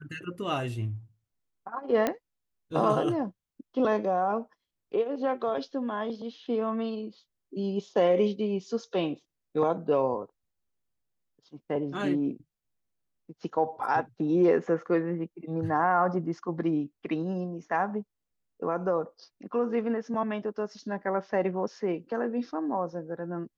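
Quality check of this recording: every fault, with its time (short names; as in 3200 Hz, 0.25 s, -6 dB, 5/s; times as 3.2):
2.07 pop -13 dBFS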